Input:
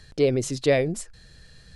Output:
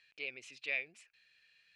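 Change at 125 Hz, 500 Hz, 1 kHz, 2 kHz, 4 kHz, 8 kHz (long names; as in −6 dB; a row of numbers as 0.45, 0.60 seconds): below −40 dB, −30.0 dB, −26.0 dB, −4.5 dB, −13.0 dB, −25.0 dB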